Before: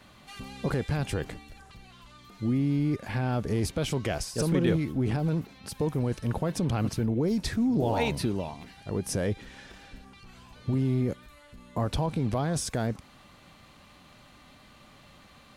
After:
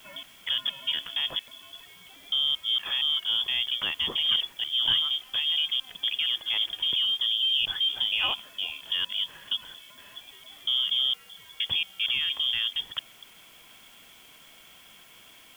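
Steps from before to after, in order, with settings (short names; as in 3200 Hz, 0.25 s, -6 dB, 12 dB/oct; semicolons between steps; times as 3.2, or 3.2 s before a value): slices in reverse order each 0.232 s, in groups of 2; inverted band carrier 3400 Hz; added noise white -57 dBFS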